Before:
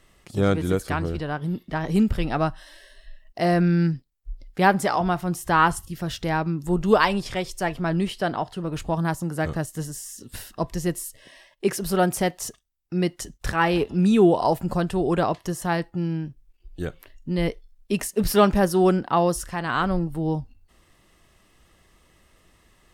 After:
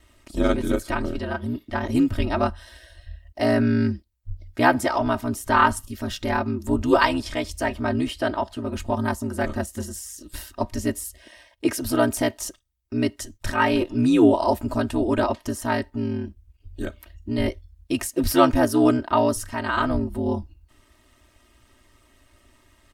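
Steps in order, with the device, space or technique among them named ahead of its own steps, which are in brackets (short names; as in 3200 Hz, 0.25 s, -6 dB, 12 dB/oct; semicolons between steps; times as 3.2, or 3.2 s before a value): ring-modulated robot voice (ring modulator 60 Hz; comb 3.2 ms, depth 80%); gain +1.5 dB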